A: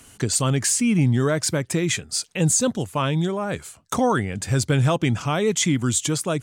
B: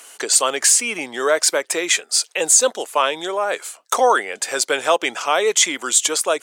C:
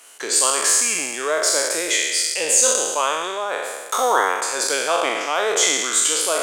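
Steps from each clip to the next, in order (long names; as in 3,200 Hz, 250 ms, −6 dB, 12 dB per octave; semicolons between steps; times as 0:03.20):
high-pass filter 460 Hz 24 dB per octave; level +7.5 dB
peak hold with a decay on every bin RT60 1.47 s; level −6.5 dB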